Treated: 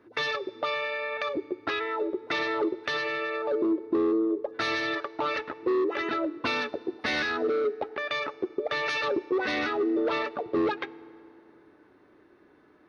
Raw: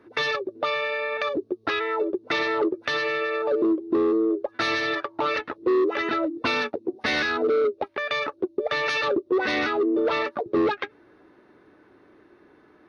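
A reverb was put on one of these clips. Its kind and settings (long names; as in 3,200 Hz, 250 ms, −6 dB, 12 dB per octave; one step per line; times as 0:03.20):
feedback delay network reverb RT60 2.6 s, high-frequency decay 0.65×, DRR 18 dB
level −4 dB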